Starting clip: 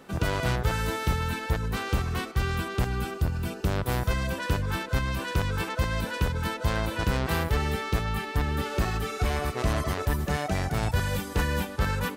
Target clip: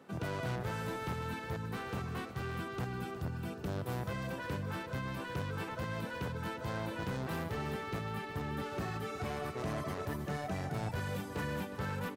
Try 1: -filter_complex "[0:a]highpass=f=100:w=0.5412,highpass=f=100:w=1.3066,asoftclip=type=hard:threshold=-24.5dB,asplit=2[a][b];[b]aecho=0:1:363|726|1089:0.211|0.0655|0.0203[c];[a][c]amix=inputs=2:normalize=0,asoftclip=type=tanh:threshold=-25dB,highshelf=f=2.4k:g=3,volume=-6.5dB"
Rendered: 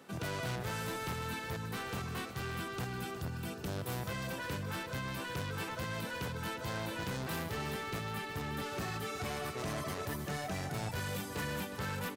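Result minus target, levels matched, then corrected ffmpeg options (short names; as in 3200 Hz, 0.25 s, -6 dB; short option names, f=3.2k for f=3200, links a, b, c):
soft clip: distortion +19 dB; 4000 Hz band +5.0 dB
-filter_complex "[0:a]highpass=f=100:w=0.5412,highpass=f=100:w=1.3066,asoftclip=type=hard:threshold=-24.5dB,asplit=2[a][b];[b]aecho=0:1:363|726|1089:0.211|0.0655|0.0203[c];[a][c]amix=inputs=2:normalize=0,asoftclip=type=tanh:threshold=-14.5dB,highshelf=f=2.4k:g=-7,volume=-6.5dB"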